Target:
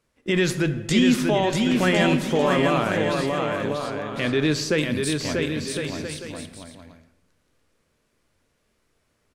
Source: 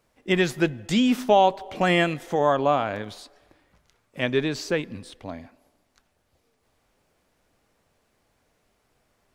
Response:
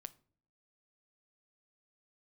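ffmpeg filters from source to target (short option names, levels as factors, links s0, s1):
-filter_complex "[0:a]asettb=1/sr,asplit=3[s0][s1][s2];[s0]atrim=end=4.784[s3];[s1]atrim=start=4.78:end=5.36,asetpts=PTS-STARTPTS,afade=t=in:d=0.004:c=qsin,afade=t=out:st=0.576:d=0.004:c=qsin,aemphasis=mode=production:type=75kf[s4];[s2]atrim=start=5.356[s5];[s3][s4]acrossfade=d=0.004:c1=hsin:c2=qsin[s6];[s6][s5]acrossfade=d=0.004:c1=qsin:c2=hsin,agate=range=0.355:threshold=0.00224:ratio=16:detection=peak,equalizer=f=760:t=o:w=0.55:g=-8,alimiter=limit=0.126:level=0:latency=1:release=39,aecho=1:1:640|1056|1326|1502|1616:0.631|0.398|0.251|0.158|0.1[s7];[1:a]atrim=start_sample=2205,asetrate=22491,aresample=44100[s8];[s7][s8]afir=irnorm=-1:irlink=0,volume=2.66"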